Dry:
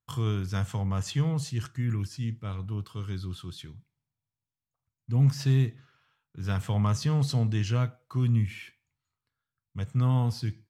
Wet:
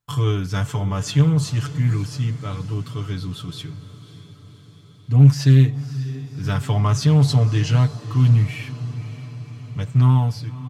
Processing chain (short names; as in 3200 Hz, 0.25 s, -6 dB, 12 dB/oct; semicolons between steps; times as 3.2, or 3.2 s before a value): ending faded out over 0.67 s; comb 6.9 ms, depth 83%; diffused feedback echo 0.563 s, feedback 61%, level -15 dB; Doppler distortion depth 0.18 ms; gain +6 dB